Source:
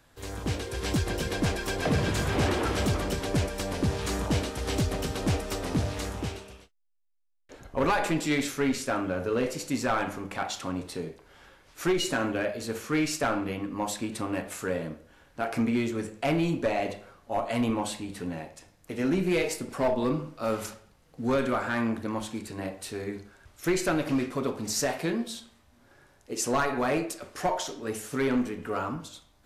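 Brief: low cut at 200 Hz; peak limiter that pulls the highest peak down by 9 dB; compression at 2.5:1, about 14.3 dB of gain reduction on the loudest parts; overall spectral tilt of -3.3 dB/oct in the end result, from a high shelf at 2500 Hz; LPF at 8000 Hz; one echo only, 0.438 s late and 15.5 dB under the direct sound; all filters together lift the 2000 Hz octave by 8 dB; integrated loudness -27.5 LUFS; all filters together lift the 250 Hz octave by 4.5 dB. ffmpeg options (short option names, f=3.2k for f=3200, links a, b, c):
-af "highpass=200,lowpass=8k,equalizer=f=250:t=o:g=7,equalizer=f=2k:t=o:g=7.5,highshelf=f=2.5k:g=6,acompressor=threshold=-40dB:ratio=2.5,alimiter=level_in=5.5dB:limit=-24dB:level=0:latency=1,volume=-5.5dB,aecho=1:1:438:0.168,volume=12dB"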